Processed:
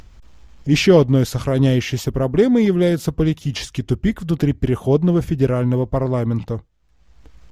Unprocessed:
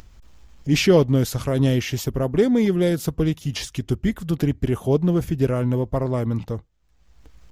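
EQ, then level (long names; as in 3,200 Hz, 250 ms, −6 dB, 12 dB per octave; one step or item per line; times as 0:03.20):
high-shelf EQ 8,900 Hz −9.5 dB
+3.5 dB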